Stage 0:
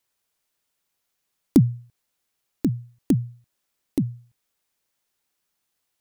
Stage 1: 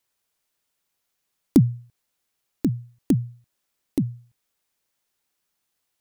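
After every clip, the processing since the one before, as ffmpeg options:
ffmpeg -i in.wav -af anull out.wav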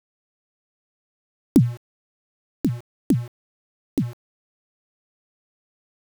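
ffmpeg -i in.wav -af "aeval=exprs='val(0)*gte(abs(val(0)),0.0168)':channel_layout=same" out.wav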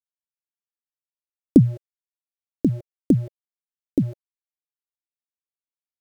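ffmpeg -i in.wav -af "lowshelf=frequency=740:width_type=q:width=3:gain=9.5,volume=-8dB" out.wav

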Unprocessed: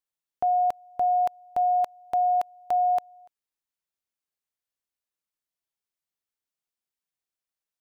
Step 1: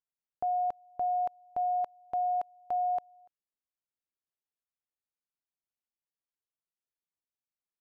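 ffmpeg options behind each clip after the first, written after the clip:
ffmpeg -i in.wav -af "lowpass=frequency=1100:poles=1,volume=-5.5dB" out.wav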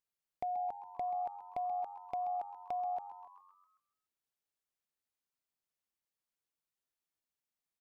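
ffmpeg -i in.wav -filter_complex "[0:a]acompressor=threshold=-39dB:ratio=3,asoftclip=type=hard:threshold=-31dB,asplit=2[link_01][link_02];[link_02]asplit=6[link_03][link_04][link_05][link_06][link_07][link_08];[link_03]adelay=131,afreqshift=92,volume=-13dB[link_09];[link_04]adelay=262,afreqshift=184,volume=-18.2dB[link_10];[link_05]adelay=393,afreqshift=276,volume=-23.4dB[link_11];[link_06]adelay=524,afreqshift=368,volume=-28.6dB[link_12];[link_07]adelay=655,afreqshift=460,volume=-33.8dB[link_13];[link_08]adelay=786,afreqshift=552,volume=-39dB[link_14];[link_09][link_10][link_11][link_12][link_13][link_14]amix=inputs=6:normalize=0[link_15];[link_01][link_15]amix=inputs=2:normalize=0,volume=1dB" out.wav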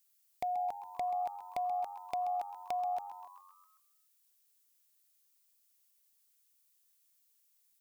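ffmpeg -i in.wav -af "crystalizer=i=7:c=0" out.wav

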